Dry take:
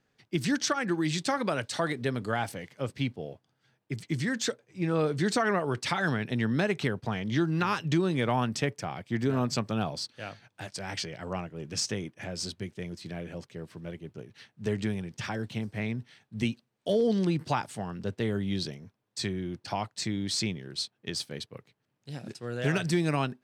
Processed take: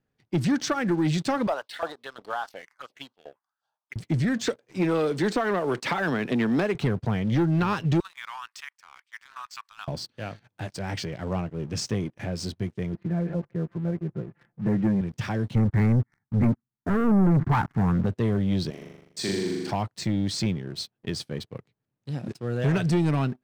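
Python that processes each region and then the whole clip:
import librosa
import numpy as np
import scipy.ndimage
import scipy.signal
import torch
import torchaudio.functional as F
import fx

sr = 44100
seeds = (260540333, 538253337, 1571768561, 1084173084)

y = fx.chain(x, sr, fx.env_phaser(low_hz=320.0, high_hz=2200.0, full_db=-27.0),
    fx.notch(hz=2400.0, q=20.0),
    fx.filter_lfo_highpass(shape='saw_up', hz=2.8, low_hz=680.0, high_hz=1600.0, q=2.1), at=(1.47, 3.96))
y = fx.chain(y, sr, fx.highpass(hz=270.0, slope=12),
    fx.band_squash(depth_pct=100), at=(4.47, 6.75))
y = fx.chain(y, sr, fx.steep_highpass(hz=1000.0, slope=48),
    fx.level_steps(step_db=10), at=(8.0, 9.88))
y = fx.chain(y, sr, fx.lowpass(hz=1800.0, slope=24),
    fx.comb(ms=5.8, depth=0.97), at=(12.94, 15.01))
y = fx.chain(y, sr, fx.brickwall_lowpass(high_hz=2300.0),
    fx.leveller(passes=3),
    fx.fixed_phaser(hz=1300.0, stages=4), at=(15.55, 18.06))
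y = fx.chain(y, sr, fx.highpass(hz=260.0, slope=12),
    fx.high_shelf(hz=10000.0, db=9.5),
    fx.room_flutter(wall_m=7.0, rt60_s=1.4), at=(18.7, 19.71))
y = fx.tilt_eq(y, sr, slope=-2.0)
y = fx.leveller(y, sr, passes=2)
y = F.gain(torch.from_numpy(y), -4.5).numpy()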